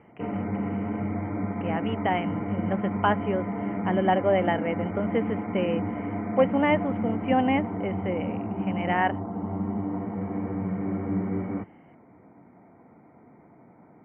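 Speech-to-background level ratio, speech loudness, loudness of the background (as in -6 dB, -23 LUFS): 3.0 dB, -27.5 LUFS, -30.5 LUFS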